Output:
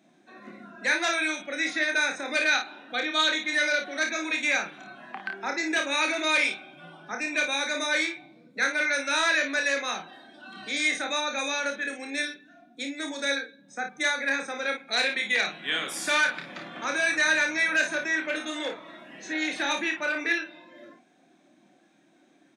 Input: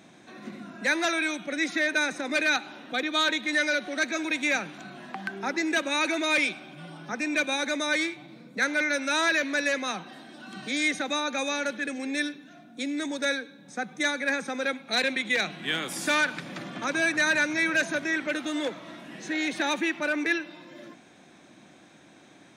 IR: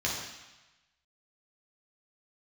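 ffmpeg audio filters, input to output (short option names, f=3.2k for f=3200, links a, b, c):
-filter_complex "[0:a]afftdn=nr=13:nf=-48,highpass=f=550:p=1,acrossover=split=1400[a][b];[a]volume=25.5dB,asoftclip=hard,volume=-25.5dB[c];[c][b]amix=inputs=2:normalize=0,aecho=1:1:29|54:0.562|0.398"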